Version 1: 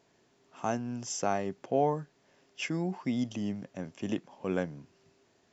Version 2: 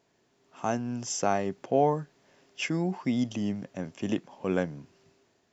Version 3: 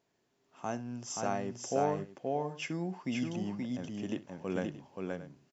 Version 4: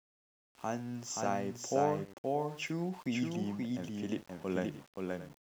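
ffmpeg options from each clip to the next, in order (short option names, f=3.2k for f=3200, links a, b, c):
-af "dynaudnorm=f=160:g=7:m=6dB,volume=-2.5dB"
-af "aecho=1:1:65|527|628:0.119|0.708|0.178,volume=-7.5dB"
-af "aeval=exprs='val(0)*gte(abs(val(0)),0.00251)':c=same"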